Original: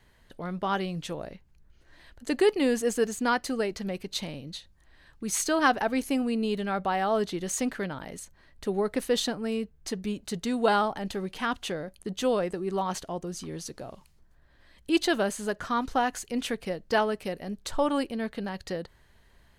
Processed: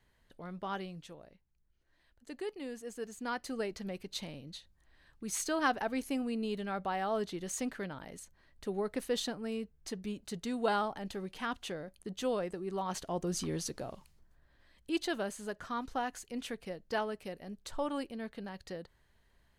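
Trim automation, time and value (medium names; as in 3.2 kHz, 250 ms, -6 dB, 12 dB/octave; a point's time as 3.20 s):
0.80 s -10 dB
1.24 s -17.5 dB
2.85 s -17.5 dB
3.61 s -7.5 dB
12.81 s -7.5 dB
13.37 s +2.5 dB
14.98 s -9.5 dB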